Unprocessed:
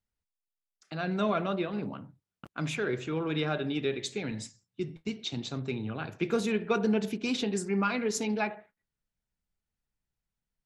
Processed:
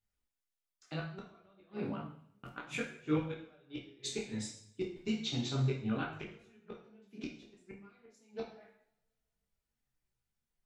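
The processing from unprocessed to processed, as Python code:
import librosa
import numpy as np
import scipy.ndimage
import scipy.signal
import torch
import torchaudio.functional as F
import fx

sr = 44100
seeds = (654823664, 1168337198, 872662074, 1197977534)

y = fx.gate_flip(x, sr, shuts_db=-22.0, range_db=-35)
y = fx.rev_double_slope(y, sr, seeds[0], early_s=0.59, late_s=1.8, knee_db=-27, drr_db=0.0)
y = fx.detune_double(y, sr, cents=11)
y = F.gain(torch.from_numpy(y), 1.0).numpy()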